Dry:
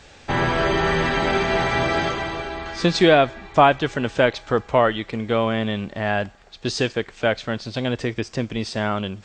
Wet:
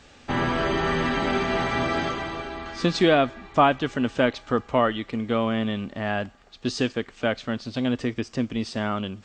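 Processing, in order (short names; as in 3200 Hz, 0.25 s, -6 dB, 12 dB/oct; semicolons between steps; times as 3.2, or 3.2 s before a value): small resonant body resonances 250/1200/2900 Hz, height 8 dB; gain -5 dB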